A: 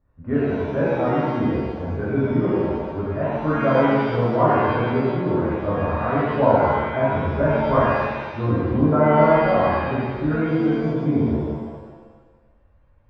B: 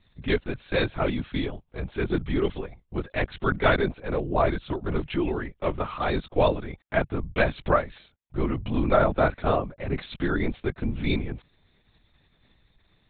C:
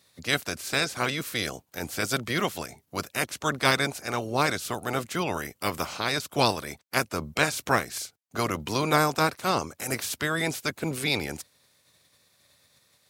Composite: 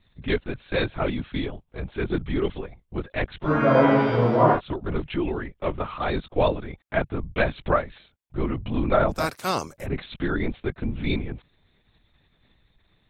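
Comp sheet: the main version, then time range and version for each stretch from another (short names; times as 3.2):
B
3.46–4.56 from A, crossfade 0.10 s
9.2–9.75 from C, crossfade 0.24 s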